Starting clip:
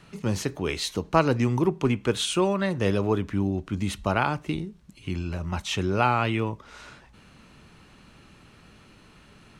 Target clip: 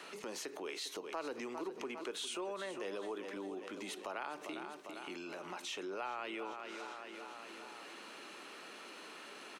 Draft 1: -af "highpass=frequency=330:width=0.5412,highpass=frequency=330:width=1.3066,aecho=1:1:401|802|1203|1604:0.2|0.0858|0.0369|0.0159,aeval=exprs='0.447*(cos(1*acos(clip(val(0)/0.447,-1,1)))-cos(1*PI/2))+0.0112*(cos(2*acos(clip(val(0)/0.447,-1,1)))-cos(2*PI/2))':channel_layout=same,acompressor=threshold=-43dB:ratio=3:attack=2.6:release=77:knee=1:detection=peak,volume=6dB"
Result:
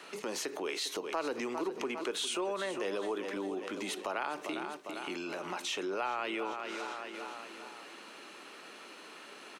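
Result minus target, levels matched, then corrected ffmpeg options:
downward compressor: peak gain reduction −6.5 dB
-af "highpass=frequency=330:width=0.5412,highpass=frequency=330:width=1.3066,aecho=1:1:401|802|1203|1604:0.2|0.0858|0.0369|0.0159,aeval=exprs='0.447*(cos(1*acos(clip(val(0)/0.447,-1,1)))-cos(1*PI/2))+0.0112*(cos(2*acos(clip(val(0)/0.447,-1,1)))-cos(2*PI/2))':channel_layout=same,acompressor=threshold=-53dB:ratio=3:attack=2.6:release=77:knee=1:detection=peak,volume=6dB"

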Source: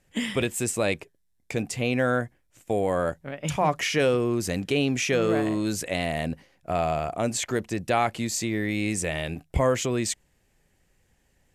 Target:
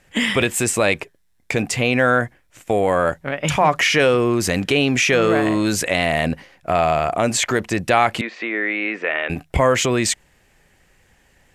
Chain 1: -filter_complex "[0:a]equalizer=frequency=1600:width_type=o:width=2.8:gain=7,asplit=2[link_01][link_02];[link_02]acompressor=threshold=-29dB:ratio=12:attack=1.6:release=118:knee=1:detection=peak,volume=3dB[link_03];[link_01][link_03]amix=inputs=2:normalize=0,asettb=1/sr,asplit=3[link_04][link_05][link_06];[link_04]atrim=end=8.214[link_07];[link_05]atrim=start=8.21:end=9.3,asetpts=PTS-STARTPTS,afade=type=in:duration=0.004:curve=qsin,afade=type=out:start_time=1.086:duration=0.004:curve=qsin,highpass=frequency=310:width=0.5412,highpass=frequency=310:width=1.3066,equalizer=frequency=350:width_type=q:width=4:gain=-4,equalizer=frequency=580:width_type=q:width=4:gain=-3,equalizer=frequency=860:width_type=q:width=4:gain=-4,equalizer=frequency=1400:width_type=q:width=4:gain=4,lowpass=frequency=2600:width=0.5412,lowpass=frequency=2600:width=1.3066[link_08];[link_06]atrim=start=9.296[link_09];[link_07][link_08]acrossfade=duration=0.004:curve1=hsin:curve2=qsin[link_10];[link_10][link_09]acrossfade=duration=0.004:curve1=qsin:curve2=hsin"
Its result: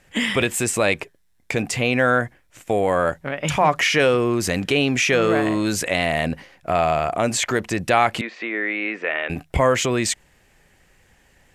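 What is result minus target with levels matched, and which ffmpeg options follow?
downward compressor: peak gain reduction +6 dB
-filter_complex "[0:a]equalizer=frequency=1600:width_type=o:width=2.8:gain=7,asplit=2[link_01][link_02];[link_02]acompressor=threshold=-22.5dB:ratio=12:attack=1.6:release=118:knee=1:detection=peak,volume=3dB[link_03];[link_01][link_03]amix=inputs=2:normalize=0,asettb=1/sr,asplit=3[link_04][link_05][link_06];[link_04]atrim=end=8.214[link_07];[link_05]atrim=start=8.21:end=9.3,asetpts=PTS-STARTPTS,afade=type=in:duration=0.004:curve=qsin,afade=type=out:start_time=1.086:duration=0.004:curve=qsin,highpass=frequency=310:width=0.5412,highpass=frequency=310:width=1.3066,equalizer=frequency=350:width_type=q:width=4:gain=-4,equalizer=frequency=580:width_type=q:width=4:gain=-3,equalizer=frequency=860:width_type=q:width=4:gain=-4,equalizer=frequency=1400:width_type=q:width=4:gain=4,lowpass=frequency=2600:width=0.5412,lowpass=frequency=2600:width=1.3066[link_08];[link_06]atrim=start=9.296[link_09];[link_07][link_08]acrossfade=duration=0.004:curve1=hsin:curve2=qsin[link_10];[link_10][link_09]acrossfade=duration=0.004:curve1=qsin:curve2=hsin"

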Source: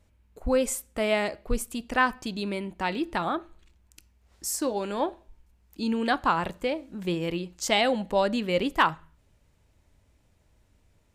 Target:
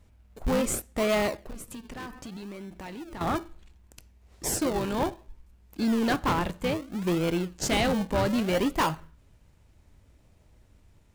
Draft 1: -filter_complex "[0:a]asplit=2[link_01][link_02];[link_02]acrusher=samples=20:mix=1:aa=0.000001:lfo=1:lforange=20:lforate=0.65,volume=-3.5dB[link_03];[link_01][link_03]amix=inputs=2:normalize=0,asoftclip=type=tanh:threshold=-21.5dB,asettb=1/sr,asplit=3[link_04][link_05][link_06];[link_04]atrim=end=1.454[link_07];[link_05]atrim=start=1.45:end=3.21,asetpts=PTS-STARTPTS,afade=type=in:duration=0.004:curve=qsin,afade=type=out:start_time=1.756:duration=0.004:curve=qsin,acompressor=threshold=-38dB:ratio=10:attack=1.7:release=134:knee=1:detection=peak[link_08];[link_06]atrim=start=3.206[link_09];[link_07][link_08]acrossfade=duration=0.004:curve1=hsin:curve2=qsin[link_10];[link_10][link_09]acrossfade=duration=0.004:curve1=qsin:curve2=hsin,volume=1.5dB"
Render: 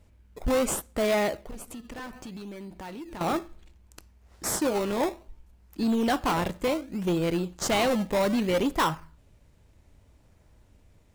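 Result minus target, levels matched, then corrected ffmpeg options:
sample-and-hold swept by an LFO: distortion −9 dB
-filter_complex "[0:a]asplit=2[link_01][link_02];[link_02]acrusher=samples=45:mix=1:aa=0.000001:lfo=1:lforange=45:lforate=0.65,volume=-3.5dB[link_03];[link_01][link_03]amix=inputs=2:normalize=0,asoftclip=type=tanh:threshold=-21.5dB,asettb=1/sr,asplit=3[link_04][link_05][link_06];[link_04]atrim=end=1.454[link_07];[link_05]atrim=start=1.45:end=3.21,asetpts=PTS-STARTPTS,afade=type=in:duration=0.004:curve=qsin,afade=type=out:start_time=1.756:duration=0.004:curve=qsin,acompressor=threshold=-38dB:ratio=10:attack=1.7:release=134:knee=1:detection=peak[link_08];[link_06]atrim=start=3.206[link_09];[link_07][link_08]acrossfade=duration=0.004:curve1=hsin:curve2=qsin[link_10];[link_10][link_09]acrossfade=duration=0.004:curve1=qsin:curve2=hsin,volume=1.5dB"

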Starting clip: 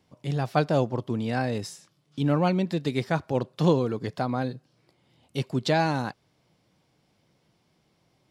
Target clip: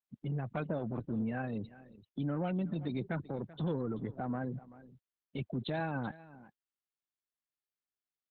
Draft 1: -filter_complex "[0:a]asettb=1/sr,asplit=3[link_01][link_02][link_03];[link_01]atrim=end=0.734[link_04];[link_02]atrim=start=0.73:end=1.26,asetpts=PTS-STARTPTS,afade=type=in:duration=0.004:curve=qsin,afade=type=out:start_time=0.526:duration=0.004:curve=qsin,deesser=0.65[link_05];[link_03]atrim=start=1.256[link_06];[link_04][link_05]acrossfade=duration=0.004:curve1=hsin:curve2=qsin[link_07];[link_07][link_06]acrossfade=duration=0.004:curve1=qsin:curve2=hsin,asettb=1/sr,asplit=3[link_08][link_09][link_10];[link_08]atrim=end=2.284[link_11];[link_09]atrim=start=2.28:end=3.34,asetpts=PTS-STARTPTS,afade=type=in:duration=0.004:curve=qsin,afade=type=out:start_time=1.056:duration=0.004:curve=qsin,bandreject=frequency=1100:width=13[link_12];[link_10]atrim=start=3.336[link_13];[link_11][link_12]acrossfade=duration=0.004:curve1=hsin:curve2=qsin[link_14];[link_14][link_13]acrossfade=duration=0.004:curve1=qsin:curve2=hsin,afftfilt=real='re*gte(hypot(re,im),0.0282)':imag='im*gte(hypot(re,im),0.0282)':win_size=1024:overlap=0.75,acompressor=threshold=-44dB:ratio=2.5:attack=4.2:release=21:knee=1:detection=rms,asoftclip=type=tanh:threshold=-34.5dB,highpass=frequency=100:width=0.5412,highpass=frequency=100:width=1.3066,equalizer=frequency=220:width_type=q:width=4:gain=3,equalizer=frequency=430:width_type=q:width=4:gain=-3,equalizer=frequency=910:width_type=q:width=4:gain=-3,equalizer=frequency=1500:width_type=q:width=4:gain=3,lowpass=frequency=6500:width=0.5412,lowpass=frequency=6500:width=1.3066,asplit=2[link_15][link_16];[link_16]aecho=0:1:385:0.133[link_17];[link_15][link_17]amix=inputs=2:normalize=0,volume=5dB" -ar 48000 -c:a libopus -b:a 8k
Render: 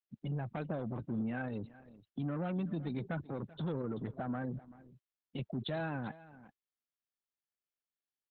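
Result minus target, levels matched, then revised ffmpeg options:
soft clipping: distortion +10 dB
-filter_complex "[0:a]asettb=1/sr,asplit=3[link_01][link_02][link_03];[link_01]atrim=end=0.734[link_04];[link_02]atrim=start=0.73:end=1.26,asetpts=PTS-STARTPTS,afade=type=in:duration=0.004:curve=qsin,afade=type=out:start_time=0.526:duration=0.004:curve=qsin,deesser=0.65[link_05];[link_03]atrim=start=1.256[link_06];[link_04][link_05]acrossfade=duration=0.004:curve1=hsin:curve2=qsin[link_07];[link_07][link_06]acrossfade=duration=0.004:curve1=qsin:curve2=hsin,asettb=1/sr,asplit=3[link_08][link_09][link_10];[link_08]atrim=end=2.284[link_11];[link_09]atrim=start=2.28:end=3.34,asetpts=PTS-STARTPTS,afade=type=in:duration=0.004:curve=qsin,afade=type=out:start_time=1.056:duration=0.004:curve=qsin,bandreject=frequency=1100:width=13[link_12];[link_10]atrim=start=3.336[link_13];[link_11][link_12]acrossfade=duration=0.004:curve1=hsin:curve2=qsin[link_14];[link_14][link_13]acrossfade=duration=0.004:curve1=qsin:curve2=hsin,afftfilt=real='re*gte(hypot(re,im),0.0282)':imag='im*gte(hypot(re,im),0.0282)':win_size=1024:overlap=0.75,acompressor=threshold=-44dB:ratio=2.5:attack=4.2:release=21:knee=1:detection=rms,asoftclip=type=tanh:threshold=-27.5dB,highpass=frequency=100:width=0.5412,highpass=frequency=100:width=1.3066,equalizer=frequency=220:width_type=q:width=4:gain=3,equalizer=frequency=430:width_type=q:width=4:gain=-3,equalizer=frequency=910:width_type=q:width=4:gain=-3,equalizer=frequency=1500:width_type=q:width=4:gain=3,lowpass=frequency=6500:width=0.5412,lowpass=frequency=6500:width=1.3066,asplit=2[link_15][link_16];[link_16]aecho=0:1:385:0.133[link_17];[link_15][link_17]amix=inputs=2:normalize=0,volume=5dB" -ar 48000 -c:a libopus -b:a 8k

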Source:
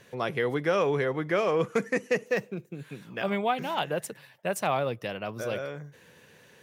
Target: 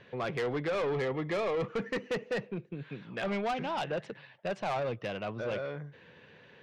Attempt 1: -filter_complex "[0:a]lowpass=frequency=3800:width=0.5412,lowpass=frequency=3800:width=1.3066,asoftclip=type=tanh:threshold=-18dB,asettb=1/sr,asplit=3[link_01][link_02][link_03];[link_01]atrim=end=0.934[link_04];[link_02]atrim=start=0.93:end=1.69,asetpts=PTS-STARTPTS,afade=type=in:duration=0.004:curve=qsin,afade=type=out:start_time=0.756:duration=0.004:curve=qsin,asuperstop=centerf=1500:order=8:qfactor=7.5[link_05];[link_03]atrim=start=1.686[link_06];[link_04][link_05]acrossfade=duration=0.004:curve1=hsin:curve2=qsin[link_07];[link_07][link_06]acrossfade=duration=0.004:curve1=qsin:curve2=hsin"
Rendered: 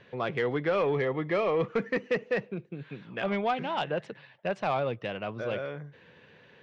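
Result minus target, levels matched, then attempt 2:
soft clipping: distortion −10 dB
-filter_complex "[0:a]lowpass=frequency=3800:width=0.5412,lowpass=frequency=3800:width=1.3066,asoftclip=type=tanh:threshold=-27.5dB,asettb=1/sr,asplit=3[link_01][link_02][link_03];[link_01]atrim=end=0.934[link_04];[link_02]atrim=start=0.93:end=1.69,asetpts=PTS-STARTPTS,afade=type=in:duration=0.004:curve=qsin,afade=type=out:start_time=0.756:duration=0.004:curve=qsin,asuperstop=centerf=1500:order=8:qfactor=7.5[link_05];[link_03]atrim=start=1.686[link_06];[link_04][link_05]acrossfade=duration=0.004:curve1=hsin:curve2=qsin[link_07];[link_07][link_06]acrossfade=duration=0.004:curve1=qsin:curve2=hsin"

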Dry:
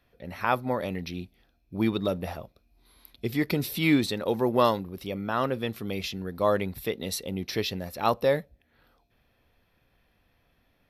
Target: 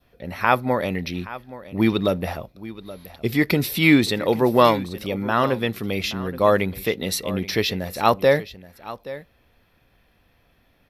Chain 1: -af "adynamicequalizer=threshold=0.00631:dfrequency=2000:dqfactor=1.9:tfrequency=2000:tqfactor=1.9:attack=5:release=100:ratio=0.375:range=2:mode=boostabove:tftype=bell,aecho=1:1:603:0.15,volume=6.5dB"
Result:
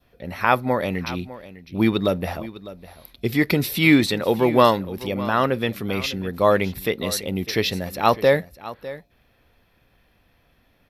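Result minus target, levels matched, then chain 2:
echo 222 ms early
-af "adynamicequalizer=threshold=0.00631:dfrequency=2000:dqfactor=1.9:tfrequency=2000:tqfactor=1.9:attack=5:release=100:ratio=0.375:range=2:mode=boostabove:tftype=bell,aecho=1:1:825:0.15,volume=6.5dB"

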